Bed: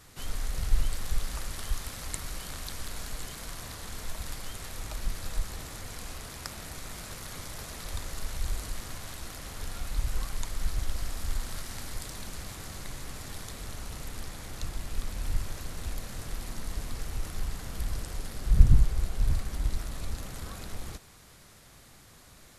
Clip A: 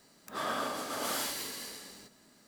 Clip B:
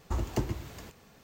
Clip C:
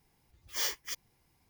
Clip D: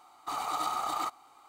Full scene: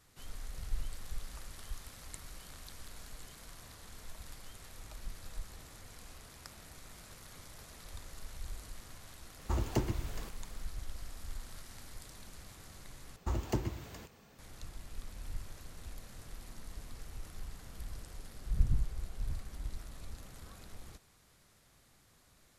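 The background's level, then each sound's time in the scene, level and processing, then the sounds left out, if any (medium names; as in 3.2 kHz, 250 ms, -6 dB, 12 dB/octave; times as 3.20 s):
bed -11.5 dB
9.39 s: add B -1.5 dB
13.16 s: replace with B -3 dB
not used: A, C, D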